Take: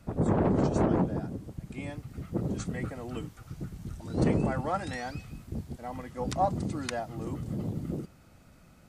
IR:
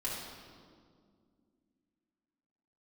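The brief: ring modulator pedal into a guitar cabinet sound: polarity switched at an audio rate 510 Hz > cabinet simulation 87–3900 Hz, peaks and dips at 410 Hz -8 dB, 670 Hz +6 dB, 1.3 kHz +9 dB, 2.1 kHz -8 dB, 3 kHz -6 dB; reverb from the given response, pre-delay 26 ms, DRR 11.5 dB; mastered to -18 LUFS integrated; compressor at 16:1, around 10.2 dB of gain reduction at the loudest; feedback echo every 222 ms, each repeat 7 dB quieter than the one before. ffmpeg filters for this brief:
-filter_complex "[0:a]acompressor=threshold=0.0282:ratio=16,aecho=1:1:222|444|666|888|1110:0.447|0.201|0.0905|0.0407|0.0183,asplit=2[s0][s1];[1:a]atrim=start_sample=2205,adelay=26[s2];[s1][s2]afir=irnorm=-1:irlink=0,volume=0.178[s3];[s0][s3]amix=inputs=2:normalize=0,aeval=exprs='val(0)*sgn(sin(2*PI*510*n/s))':c=same,highpass=87,equalizer=f=410:t=q:w=4:g=-8,equalizer=f=670:t=q:w=4:g=6,equalizer=f=1300:t=q:w=4:g=9,equalizer=f=2100:t=q:w=4:g=-8,equalizer=f=3000:t=q:w=4:g=-6,lowpass=f=3900:w=0.5412,lowpass=f=3900:w=1.3066,volume=6.31"

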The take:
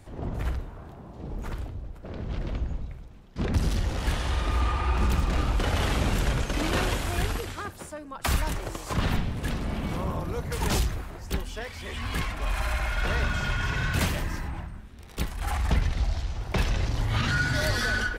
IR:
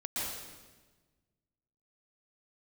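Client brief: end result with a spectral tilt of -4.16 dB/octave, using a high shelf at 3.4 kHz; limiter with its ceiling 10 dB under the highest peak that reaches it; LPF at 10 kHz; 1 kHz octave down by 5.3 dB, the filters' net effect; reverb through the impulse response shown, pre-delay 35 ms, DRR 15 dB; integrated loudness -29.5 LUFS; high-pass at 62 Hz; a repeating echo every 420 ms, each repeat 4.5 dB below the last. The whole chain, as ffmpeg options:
-filter_complex "[0:a]highpass=62,lowpass=10000,equalizer=f=1000:t=o:g=-8,highshelf=f=3400:g=6,alimiter=limit=0.0631:level=0:latency=1,aecho=1:1:420|840|1260|1680|2100|2520|2940|3360|3780:0.596|0.357|0.214|0.129|0.0772|0.0463|0.0278|0.0167|0.01,asplit=2[s0][s1];[1:a]atrim=start_sample=2205,adelay=35[s2];[s1][s2]afir=irnorm=-1:irlink=0,volume=0.106[s3];[s0][s3]amix=inputs=2:normalize=0,volume=1.41"

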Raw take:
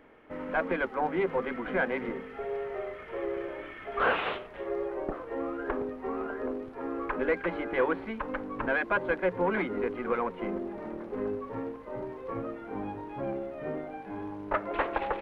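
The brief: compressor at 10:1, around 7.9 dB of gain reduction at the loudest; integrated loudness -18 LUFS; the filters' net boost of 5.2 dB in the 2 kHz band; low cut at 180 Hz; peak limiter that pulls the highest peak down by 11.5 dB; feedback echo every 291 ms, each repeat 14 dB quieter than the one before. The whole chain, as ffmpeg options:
-af "highpass=180,equalizer=f=2000:t=o:g=7,acompressor=threshold=0.0398:ratio=10,alimiter=level_in=1.88:limit=0.0631:level=0:latency=1,volume=0.531,aecho=1:1:291|582:0.2|0.0399,volume=10.6"

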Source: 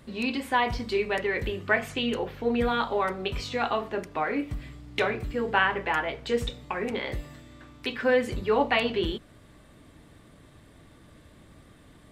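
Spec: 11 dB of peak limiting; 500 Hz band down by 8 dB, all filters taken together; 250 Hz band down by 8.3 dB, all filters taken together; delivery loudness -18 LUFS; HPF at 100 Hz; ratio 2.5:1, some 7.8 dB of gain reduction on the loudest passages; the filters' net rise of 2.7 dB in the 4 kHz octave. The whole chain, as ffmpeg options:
-af "highpass=100,equalizer=f=250:t=o:g=-7.5,equalizer=f=500:t=o:g=-7.5,equalizer=f=4000:t=o:g=4,acompressor=threshold=0.0282:ratio=2.5,volume=8.41,alimiter=limit=0.501:level=0:latency=1"

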